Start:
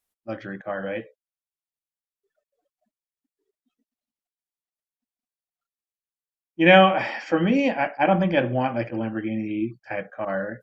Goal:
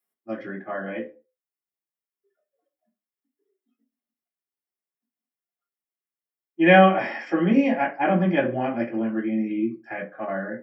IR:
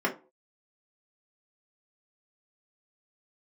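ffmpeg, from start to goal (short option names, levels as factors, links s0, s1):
-filter_complex "[0:a]aemphasis=mode=production:type=50kf[s0];[1:a]atrim=start_sample=2205[s1];[s0][s1]afir=irnorm=-1:irlink=0,volume=0.224"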